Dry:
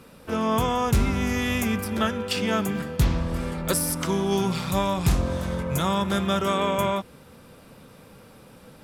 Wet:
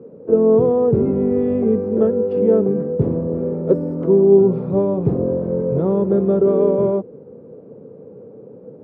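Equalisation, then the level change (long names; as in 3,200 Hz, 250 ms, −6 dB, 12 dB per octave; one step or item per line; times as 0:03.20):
high-pass filter 110 Hz 24 dB per octave
low-pass with resonance 440 Hz, resonance Q 4.9
+4.5 dB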